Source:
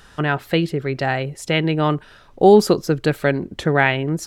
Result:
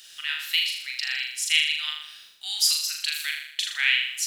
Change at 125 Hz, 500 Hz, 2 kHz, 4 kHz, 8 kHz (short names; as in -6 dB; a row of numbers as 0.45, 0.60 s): under -40 dB, under -40 dB, -2.5 dB, +7.5 dB, +8.0 dB